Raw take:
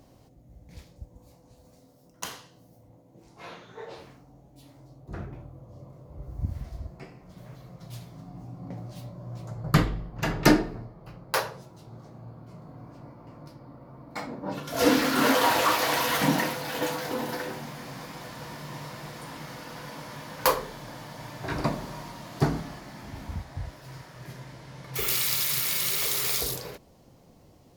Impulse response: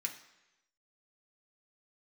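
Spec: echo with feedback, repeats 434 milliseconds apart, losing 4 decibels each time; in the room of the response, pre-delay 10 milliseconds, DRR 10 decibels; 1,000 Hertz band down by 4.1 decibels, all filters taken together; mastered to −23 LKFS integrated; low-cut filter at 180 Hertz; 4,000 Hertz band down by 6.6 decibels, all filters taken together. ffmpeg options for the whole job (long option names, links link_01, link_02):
-filter_complex "[0:a]highpass=180,equalizer=frequency=1000:width_type=o:gain=-4.5,equalizer=frequency=4000:width_type=o:gain=-8.5,aecho=1:1:434|868|1302|1736|2170|2604|3038|3472|3906:0.631|0.398|0.25|0.158|0.0994|0.0626|0.0394|0.0249|0.0157,asplit=2[link_01][link_02];[1:a]atrim=start_sample=2205,adelay=10[link_03];[link_02][link_03]afir=irnorm=-1:irlink=0,volume=-10dB[link_04];[link_01][link_04]amix=inputs=2:normalize=0,volume=5dB"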